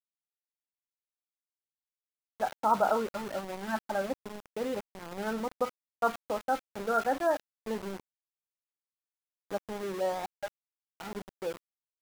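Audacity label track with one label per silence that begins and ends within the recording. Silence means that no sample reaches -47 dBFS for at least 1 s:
8.000000	9.510000	silence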